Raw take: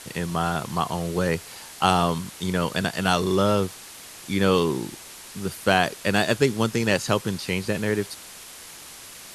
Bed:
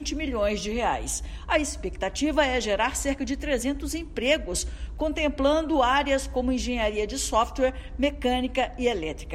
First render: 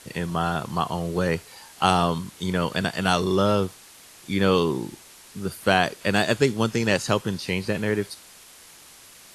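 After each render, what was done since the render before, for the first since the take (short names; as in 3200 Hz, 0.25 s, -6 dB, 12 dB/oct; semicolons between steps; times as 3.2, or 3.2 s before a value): noise print and reduce 6 dB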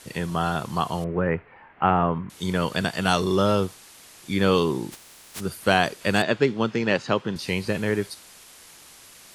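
1.04–2.3 steep low-pass 2300 Hz; 4.91–5.39 spectral contrast lowered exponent 0.23; 6.22–7.36 BPF 140–3400 Hz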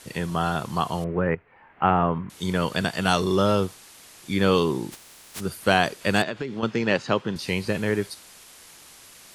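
1.35–1.85 fade in, from -12 dB; 6.23–6.63 compressor 16:1, threshold -25 dBFS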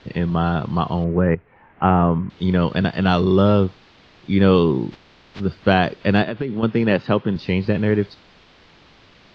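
inverse Chebyshev low-pass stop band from 9500 Hz, stop band 50 dB; low shelf 470 Hz +9.5 dB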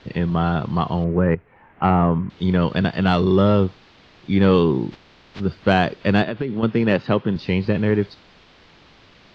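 soft clip -3 dBFS, distortion -24 dB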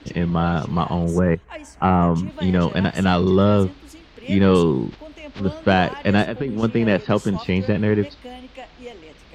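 add bed -13 dB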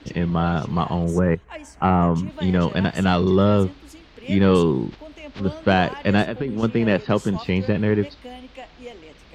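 gain -1 dB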